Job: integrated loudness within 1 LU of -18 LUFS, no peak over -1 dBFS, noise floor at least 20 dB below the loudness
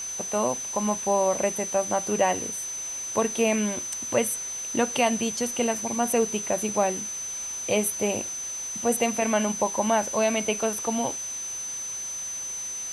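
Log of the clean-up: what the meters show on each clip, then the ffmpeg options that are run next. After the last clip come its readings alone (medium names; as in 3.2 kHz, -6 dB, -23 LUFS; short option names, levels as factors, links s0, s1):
steady tone 6.1 kHz; tone level -31 dBFS; noise floor -34 dBFS; noise floor target -46 dBFS; loudness -26.0 LUFS; peak level -9.0 dBFS; loudness target -18.0 LUFS
-> -af "bandreject=f=6100:w=30"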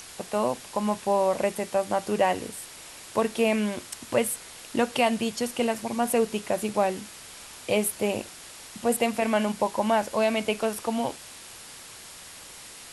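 steady tone not found; noise floor -45 dBFS; noise floor target -47 dBFS
-> -af "afftdn=nr=6:nf=-45"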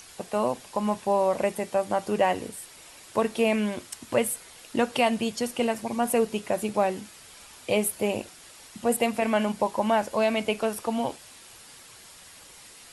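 noise floor -49 dBFS; loudness -27.0 LUFS; peak level -9.0 dBFS; loudness target -18.0 LUFS
-> -af "volume=2.82,alimiter=limit=0.891:level=0:latency=1"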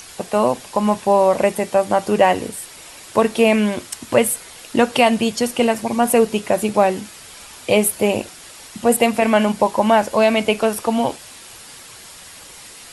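loudness -18.0 LUFS; peak level -1.0 dBFS; noise floor -40 dBFS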